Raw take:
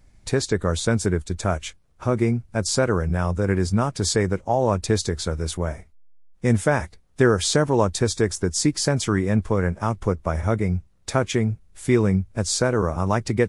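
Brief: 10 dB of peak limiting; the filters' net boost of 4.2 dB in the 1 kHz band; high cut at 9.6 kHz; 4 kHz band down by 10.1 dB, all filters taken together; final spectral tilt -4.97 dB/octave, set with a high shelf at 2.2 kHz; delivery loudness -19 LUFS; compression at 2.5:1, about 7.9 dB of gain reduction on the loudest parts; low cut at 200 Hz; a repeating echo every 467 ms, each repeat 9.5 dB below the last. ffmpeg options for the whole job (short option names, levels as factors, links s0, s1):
-af "highpass=200,lowpass=9600,equalizer=f=1000:t=o:g=7,highshelf=f=2200:g=-5.5,equalizer=f=4000:t=o:g=-7.5,acompressor=threshold=0.0562:ratio=2.5,alimiter=limit=0.126:level=0:latency=1,aecho=1:1:467|934|1401|1868:0.335|0.111|0.0365|0.012,volume=4.22"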